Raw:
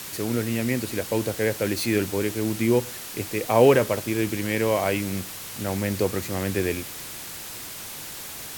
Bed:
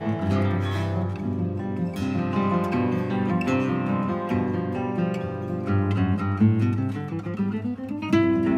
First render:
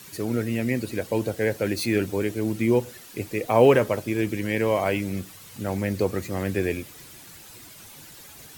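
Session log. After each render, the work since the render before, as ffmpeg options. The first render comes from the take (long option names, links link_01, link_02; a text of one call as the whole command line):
ffmpeg -i in.wav -af "afftdn=noise_reduction=11:noise_floor=-37" out.wav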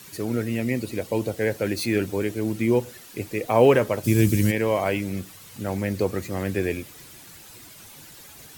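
ffmpeg -i in.wav -filter_complex "[0:a]asettb=1/sr,asplit=3[link_01][link_02][link_03];[link_01]atrim=end=0.604[link_04];[link_02]atrim=start=0.6:end=1.38,asetpts=PTS-STARTPTS,afade=type=in:duration=0.004:curve=qsin,afade=type=out:start_time=0.776:duration=0.004:curve=qsin,equalizer=frequency=1600:width_type=o:width=0.2:gain=-8[link_05];[link_03]atrim=start=1.376[link_06];[link_04][link_05]acrossfade=duration=0.004:curve1=hsin:curve2=qsin[link_07];[link_07][link_06]acrossfade=duration=0.004:curve1=qsin:curve2=hsin,asplit=3[link_08][link_09][link_10];[link_08]afade=type=out:start_time=4.03:duration=0.02[link_11];[link_09]bass=frequency=250:gain=13,treble=frequency=4000:gain=13,afade=type=in:start_time=4.03:duration=0.02,afade=type=out:start_time=4.5:duration=0.02[link_12];[link_10]afade=type=in:start_time=4.5:duration=0.02[link_13];[link_11][link_12][link_13]amix=inputs=3:normalize=0" out.wav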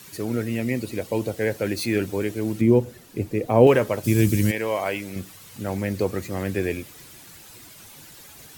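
ffmpeg -i in.wav -filter_complex "[0:a]asettb=1/sr,asplit=3[link_01][link_02][link_03];[link_01]atrim=end=2.614[link_04];[link_02]atrim=start=2.61:end=3.67,asetpts=PTS-STARTPTS,afade=type=in:duration=0.004:curve=qsin,afade=type=out:start_time=1.056:duration=0.004:curve=qsin,tiltshelf=frequency=660:gain=6.5[link_05];[link_03]atrim=start=3.666[link_06];[link_04][link_05]acrossfade=duration=0.004:curve1=hsin:curve2=qsin[link_07];[link_07][link_06]acrossfade=duration=0.004:curve1=qsin:curve2=hsin,asettb=1/sr,asplit=3[link_08][link_09][link_10];[link_08]atrim=end=4.514[link_11];[link_09]atrim=start=4.51:end=5.16,asetpts=PTS-STARTPTS,afade=type=in:duration=0.004:curve=qsin,afade=type=out:start_time=0.646:duration=0.004:curve=qsin,lowshelf=frequency=300:gain=-10[link_12];[link_10]atrim=start=5.156[link_13];[link_11][link_12]acrossfade=duration=0.004:curve1=hsin:curve2=qsin[link_14];[link_14][link_13]acrossfade=duration=0.004:curve1=qsin:curve2=hsin" out.wav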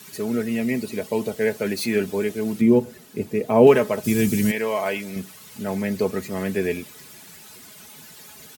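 ffmpeg -i in.wav -af "highpass=80,aecho=1:1:4.7:0.61" out.wav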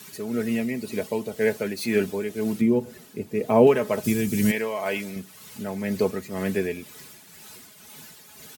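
ffmpeg -i in.wav -af "tremolo=f=2:d=0.48" out.wav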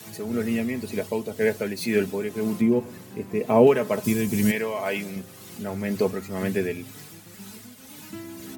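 ffmpeg -i in.wav -i bed.wav -filter_complex "[1:a]volume=-19dB[link_01];[0:a][link_01]amix=inputs=2:normalize=0" out.wav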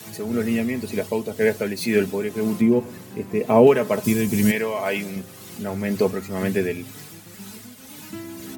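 ffmpeg -i in.wav -af "volume=3dB,alimiter=limit=-3dB:level=0:latency=1" out.wav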